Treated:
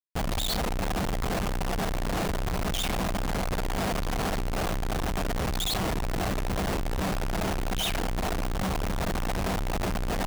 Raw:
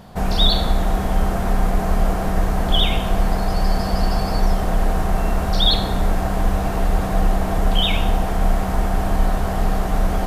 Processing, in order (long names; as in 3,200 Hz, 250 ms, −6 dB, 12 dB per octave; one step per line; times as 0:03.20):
reverb reduction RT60 0.83 s
comparator with hysteresis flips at −31.5 dBFS
level −8.5 dB